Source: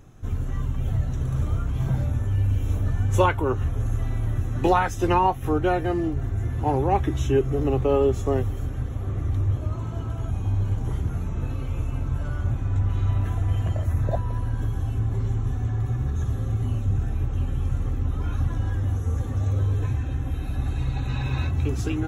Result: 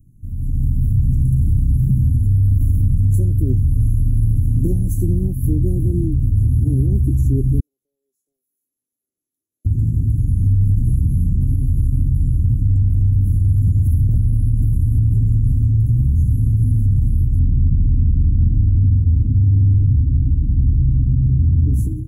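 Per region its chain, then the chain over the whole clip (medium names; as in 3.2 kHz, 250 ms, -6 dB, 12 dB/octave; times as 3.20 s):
7.60–9.65 s: high-pass 1.5 kHz 24 dB/octave + compression 2:1, threshold -51 dBFS + distance through air 380 m
17.39–21.74 s: hard clipper -21 dBFS + distance through air 300 m
whole clip: inverse Chebyshev band-stop 970–2800 Hz, stop band 80 dB; peak limiter -21.5 dBFS; level rider gain up to 13 dB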